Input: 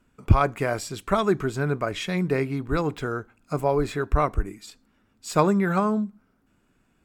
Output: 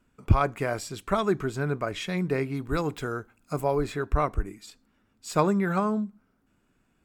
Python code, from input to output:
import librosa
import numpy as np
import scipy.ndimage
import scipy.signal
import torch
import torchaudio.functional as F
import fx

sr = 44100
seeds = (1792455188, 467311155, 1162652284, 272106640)

y = fx.high_shelf(x, sr, hz=fx.line((2.54, 5300.0), (3.78, 8600.0)), db=8.5, at=(2.54, 3.78), fade=0.02)
y = y * 10.0 ** (-3.0 / 20.0)